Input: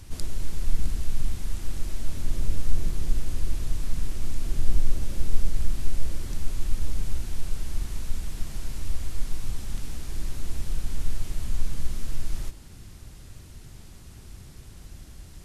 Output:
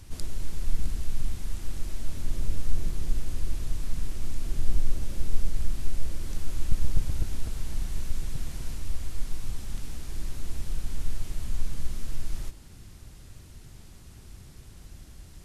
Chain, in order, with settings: 6.09–8.75 s: backward echo that repeats 126 ms, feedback 69%, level -7.5 dB; trim -2.5 dB

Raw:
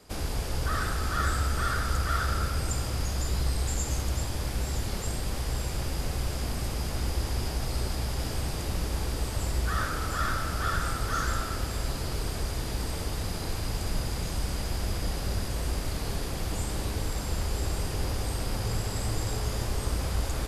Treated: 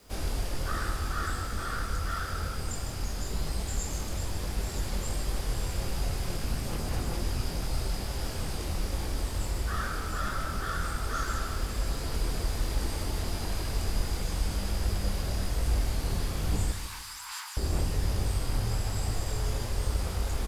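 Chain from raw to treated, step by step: gain riding 2 s; chorus voices 6, 1.2 Hz, delay 23 ms, depth 3 ms; 16.72–17.57 s: steep high-pass 890 Hz 72 dB/octave; on a send: feedback delay 153 ms, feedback 37%, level -10 dB; on the sum: bit crusher 10-bit

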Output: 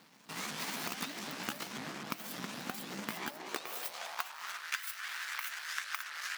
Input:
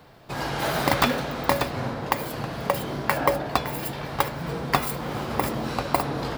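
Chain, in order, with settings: sawtooth pitch modulation +7.5 st, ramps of 254 ms; amplifier tone stack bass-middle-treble 5-5-5; compression 12:1, threshold -39 dBFS, peak gain reduction 12.5 dB; half-wave rectifier; high-pass sweep 220 Hz -> 1.6 kHz, 3.16–4.71 s; trim +8 dB

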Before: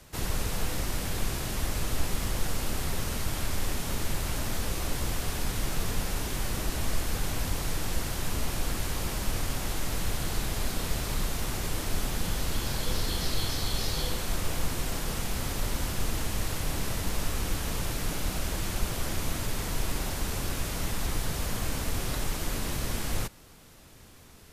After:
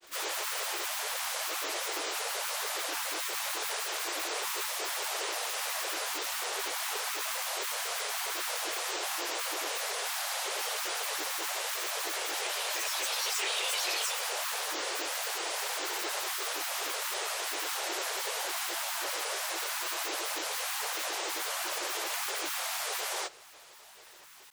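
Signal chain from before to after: brick-wall FIR high-pass 550 Hz; added noise white -66 dBFS; granulator 100 ms, grains 30 per s, pitch spread up and down by 12 st; trim +6.5 dB

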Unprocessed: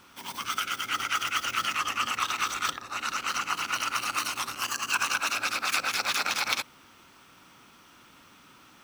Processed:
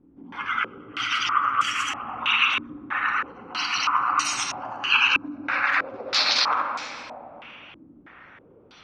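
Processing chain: coarse spectral quantiser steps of 30 dB; simulated room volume 200 m³, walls hard, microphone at 0.49 m; step-sequenced low-pass 3.1 Hz 290–7200 Hz

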